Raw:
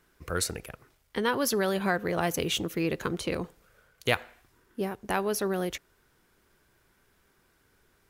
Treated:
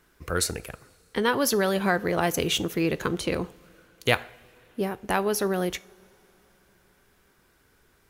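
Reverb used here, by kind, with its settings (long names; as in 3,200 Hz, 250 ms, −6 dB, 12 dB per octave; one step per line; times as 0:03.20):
coupled-rooms reverb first 0.37 s, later 3.9 s, from −20 dB, DRR 16.5 dB
level +3.5 dB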